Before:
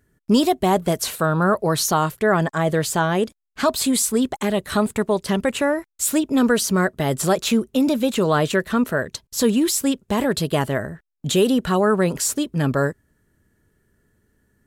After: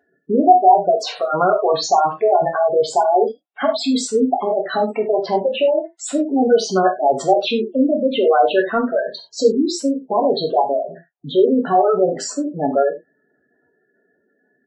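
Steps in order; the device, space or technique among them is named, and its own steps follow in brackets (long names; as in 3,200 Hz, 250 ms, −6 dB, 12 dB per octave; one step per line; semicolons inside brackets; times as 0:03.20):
intercom (band-pass filter 310–4,500 Hz; parametric band 720 Hz +9 dB 0.55 octaves; soft clipping −11.5 dBFS, distortion −13 dB; double-tracking delay 23 ms −12 dB)
gate on every frequency bin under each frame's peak −10 dB strong
0:10.82–0:12.02: high-frequency loss of the air 320 metres
reverb whose tail is shaped and stops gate 120 ms falling, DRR 1 dB
level +3.5 dB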